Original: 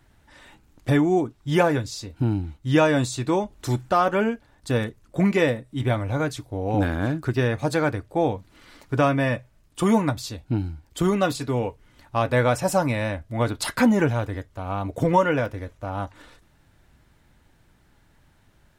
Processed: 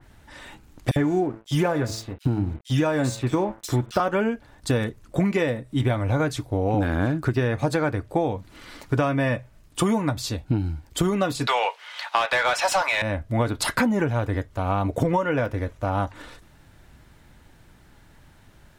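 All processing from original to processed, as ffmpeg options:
-filter_complex "[0:a]asettb=1/sr,asplit=3[s0][s1][s2];[s0]atrim=end=0.914[s3];[s1]atrim=start=0.91:end=4,asetpts=PTS-STARTPTS,afade=t=in:d=0.004:c=qsin,afade=t=out:st=3.086:d=0.004:c=qsin,bandreject=f=110.5:t=h:w=4,bandreject=f=221:t=h:w=4,bandreject=f=331.5:t=h:w=4,bandreject=f=442:t=h:w=4,bandreject=f=552.5:t=h:w=4,bandreject=f=663:t=h:w=4,bandreject=f=773.5:t=h:w=4,bandreject=f=884:t=h:w=4,bandreject=f=994.5:t=h:w=4,bandreject=f=1105:t=h:w=4,bandreject=f=1215.5:t=h:w=4,bandreject=f=1326:t=h:w=4,bandreject=f=1436.5:t=h:w=4,bandreject=f=1547:t=h:w=4,bandreject=f=1657.5:t=h:w=4,bandreject=f=1768:t=h:w=4,bandreject=f=1878.5:t=h:w=4,bandreject=f=1989:t=h:w=4,bandreject=f=2099.5:t=h:w=4,bandreject=f=2210:t=h:w=4,bandreject=f=2320.5:t=h:w=4,bandreject=f=2431:t=h:w=4,bandreject=f=2541.5:t=h:w=4,bandreject=f=2652:t=h:w=4,bandreject=f=2762.5:t=h:w=4,bandreject=f=2873:t=h:w=4,bandreject=f=2983.5:t=h:w=4,bandreject=f=3094:t=h:w=4,bandreject=f=3204.5:t=h:w=4,bandreject=f=3315:t=h:w=4,bandreject=f=3425.5:t=h:w=4,bandreject=f=3536:t=h:w=4,bandreject=f=3646.5:t=h:w=4,bandreject=f=3757:t=h:w=4,aeval=exprs='sgn(val(0))*max(abs(val(0))-0.00668,0)':c=same,acrossover=split=2800[s4][s5];[s4]adelay=50[s6];[s6][s5]amix=inputs=2:normalize=0,atrim=end_sample=136269[s7];[s2]atrim=start=3.996[s8];[s3][s7]acrossfade=d=0.004:c1=hsin:c2=qsin[s9];[s9][s8]acrossfade=d=0.004:c1=qsin:c2=hsin,asettb=1/sr,asplit=3[s10][s11][s12];[s10]atrim=end=11.474[s13];[s11]atrim=start=11.47:end=13.02,asetpts=PTS-STARTPTS,afade=t=in:d=0.004:c=qsin,afade=t=out:st=1.546:d=0.004:c=qsin,highpass=f=640:w=0.5412,highpass=f=640:w=1.3066,equalizer=f=3700:w=0.83:g=10.5,asplit=2[s14][s15];[s15]highpass=f=720:p=1,volume=7.94,asoftclip=type=tanh:threshold=0.447[s16];[s14][s16]amix=inputs=2:normalize=0,lowpass=f=4300:p=1,volume=0.501[s17];[s12]atrim=start=13.016[s18];[s13][s17]acrossfade=d=0.004:c1=hsin:c2=qsin[s19];[s19][s18]acrossfade=d=0.004:c1=qsin:c2=hsin,acompressor=threshold=0.0562:ratio=10,adynamicequalizer=threshold=0.00398:dfrequency=2800:dqfactor=0.7:tfrequency=2800:tqfactor=0.7:attack=5:release=100:ratio=0.375:range=2:mode=cutabove:tftype=highshelf,volume=2.11"

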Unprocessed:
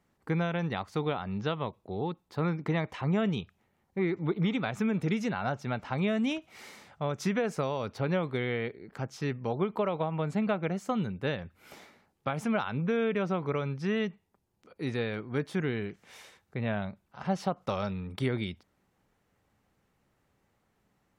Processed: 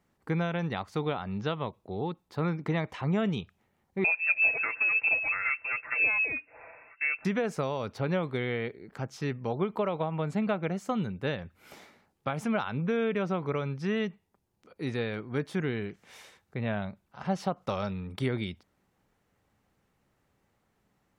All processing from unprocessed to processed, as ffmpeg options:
-filter_complex "[0:a]asettb=1/sr,asplit=3[s0][s1][s2];[s0]atrim=end=4.044[s3];[s1]atrim=start=4.04:end=7.25,asetpts=PTS-STARTPTS,afade=t=in:d=0.004:c=qsin,afade=t=out:st=3.206:d=0.004:c=qsin,aecho=1:1:5.6:0.57,atrim=end_sample=141561,lowpass=f=2400:t=q:w=0.5098,lowpass=f=2400:t=q:w=0.6013,lowpass=f=2400:t=q:w=0.9,lowpass=f=2400:t=q:w=2.563,afreqshift=-2800[s4];[s2]atrim=start=7.246[s5];[s3][s4]acrossfade=d=0.004:c1=hsin:c2=qsin[s6];[s6][s5]acrossfade=d=0.004:c1=qsin:c2=hsin"

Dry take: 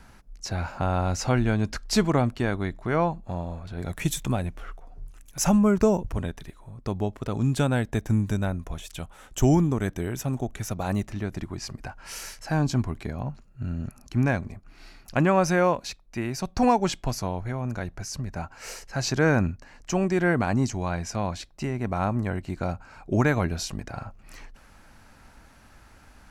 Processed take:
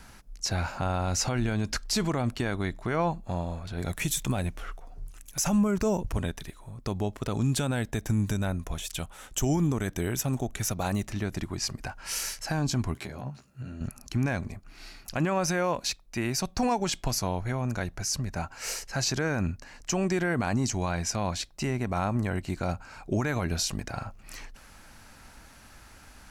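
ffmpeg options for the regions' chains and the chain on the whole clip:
-filter_complex "[0:a]asettb=1/sr,asplit=3[s0][s1][s2];[s0]atrim=end=12.954[s3];[s1]atrim=start=12.95:end=13.81,asetpts=PTS-STARTPTS,afade=t=in:d=0.004:c=qsin,afade=t=out:st=0.856:d=0.004:c=qsin,highpass=97,acompressor=threshold=0.0158:ratio=4:attack=3.2:release=140:knee=1:detection=peak,asplit=2[s4][s5];[s5]adelay=15,volume=0.708[s6];[s4][s6]amix=inputs=2:normalize=0,atrim=end_sample=37926[s7];[s2]atrim=start=13.806[s8];[s3][s7]acrossfade=d=0.004:c1=hsin:c2=qsin[s9];[s9][s8]acrossfade=d=0.004:c1=qsin:c2=hsin,highshelf=f=2600:g=7.5,alimiter=limit=0.133:level=0:latency=1:release=61"

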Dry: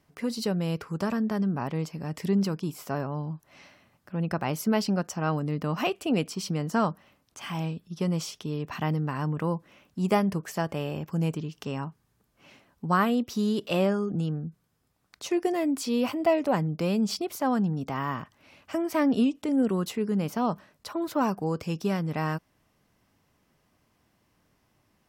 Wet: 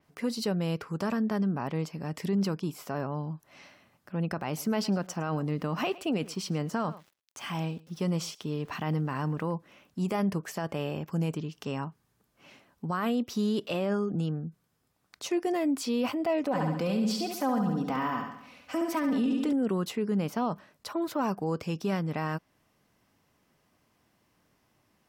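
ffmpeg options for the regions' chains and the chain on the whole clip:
-filter_complex "[0:a]asettb=1/sr,asplit=3[s0][s1][s2];[s0]atrim=end=4.464[s3];[s1]atrim=start=4.46:end=9.54,asetpts=PTS-STARTPTS,afade=t=in:d=0.004:c=qsin,afade=t=out:st=5.076:d=0.004:c=qsin,aeval=exprs='val(0)*gte(abs(val(0)),0.00224)':c=same,aecho=1:1:109:0.0794,atrim=end_sample=224028[s4];[s2]atrim=start=9.536[s5];[s3][s4]acrossfade=d=0.004:c1=hsin:c2=qsin[s6];[s6][s5]acrossfade=d=0.004:c1=qsin:c2=hsin,asettb=1/sr,asplit=3[s7][s8][s9];[s7]atrim=end=16.434[s10];[s8]atrim=start=16.43:end=19.53,asetpts=PTS-STARTPTS,afade=t=in:d=0.004:c=qsin,afade=t=out:st=3.096:d=0.004:c=qsin,aecho=1:1:4:0.56,atrim=end_sample=136710,aecho=1:1:69|138|207|276|345|414:0.501|0.261|0.136|0.0705|0.0366|0.0191,atrim=end_sample=136710[s11];[s9]atrim=start=19.526[s12];[s10][s11]acrossfade=d=0.004:c1=hsin:c2=qsin[s13];[s13][s12]acrossfade=d=0.004:c1=qsin:c2=hsin,lowshelf=f=93:g=-7,alimiter=limit=0.0891:level=0:latency=1:release=21,adynamicequalizer=threshold=0.00251:dfrequency=5200:dqfactor=0.7:tfrequency=5200:tqfactor=0.7:attack=5:release=100:ratio=0.375:range=2:mode=cutabove:tftype=highshelf"

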